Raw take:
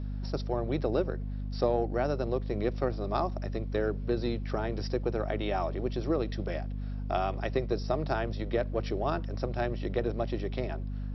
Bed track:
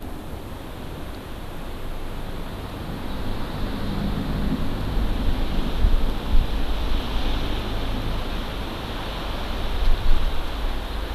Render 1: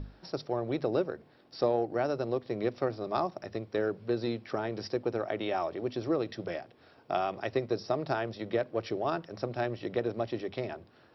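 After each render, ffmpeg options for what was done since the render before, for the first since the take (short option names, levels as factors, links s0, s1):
-af "bandreject=f=50:t=h:w=6,bandreject=f=100:t=h:w=6,bandreject=f=150:t=h:w=6,bandreject=f=200:t=h:w=6,bandreject=f=250:t=h:w=6"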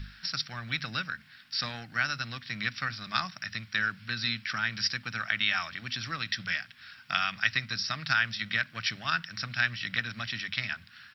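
-af "firequalizer=gain_entry='entry(210,0);entry(370,-28);entry(1500,15)':delay=0.05:min_phase=1"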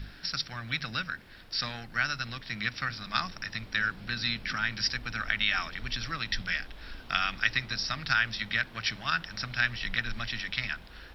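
-filter_complex "[1:a]volume=0.0794[s0];[0:a][s0]amix=inputs=2:normalize=0"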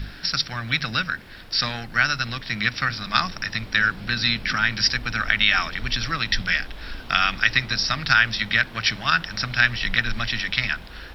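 -af "volume=2.82,alimiter=limit=0.794:level=0:latency=1"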